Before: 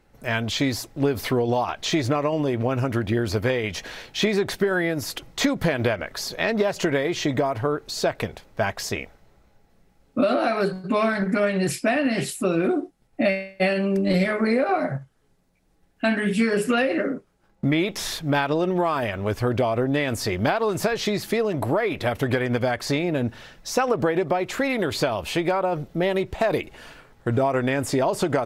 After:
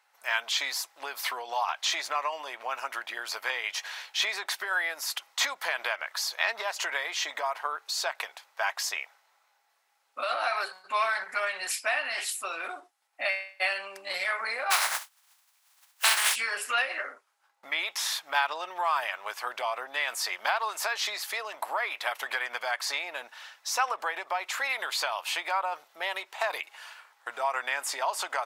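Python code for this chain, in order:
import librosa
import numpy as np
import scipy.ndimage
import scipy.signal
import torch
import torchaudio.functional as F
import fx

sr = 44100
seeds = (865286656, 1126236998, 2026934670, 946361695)

y = fx.spec_flatten(x, sr, power=0.27, at=(14.7, 16.34), fade=0.02)
y = scipy.signal.sosfilt(scipy.signal.cheby1(3, 1.0, 900.0, 'highpass', fs=sr, output='sos'), y)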